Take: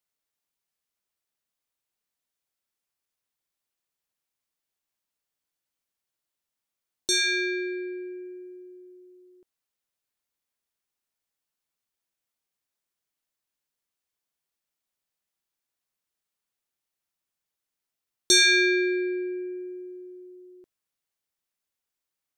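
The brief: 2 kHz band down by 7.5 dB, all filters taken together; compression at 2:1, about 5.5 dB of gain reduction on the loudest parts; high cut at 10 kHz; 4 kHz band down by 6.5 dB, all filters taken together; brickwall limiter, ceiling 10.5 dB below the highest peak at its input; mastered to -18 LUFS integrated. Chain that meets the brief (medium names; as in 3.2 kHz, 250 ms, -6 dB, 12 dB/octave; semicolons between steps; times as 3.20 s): low-pass 10 kHz; peaking EQ 2 kHz -8.5 dB; peaking EQ 4 kHz -5.5 dB; compression 2:1, threshold -29 dBFS; trim +15 dB; peak limiter -10 dBFS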